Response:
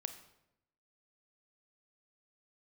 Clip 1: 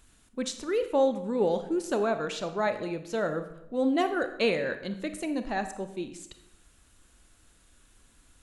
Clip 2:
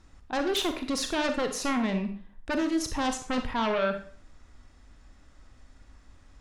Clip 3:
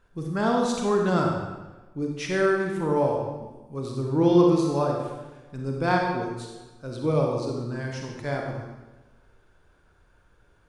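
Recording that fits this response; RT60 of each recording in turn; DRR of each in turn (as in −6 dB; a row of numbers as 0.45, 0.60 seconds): 1; 0.85, 0.45, 1.2 seconds; 8.5, 6.0, 0.0 decibels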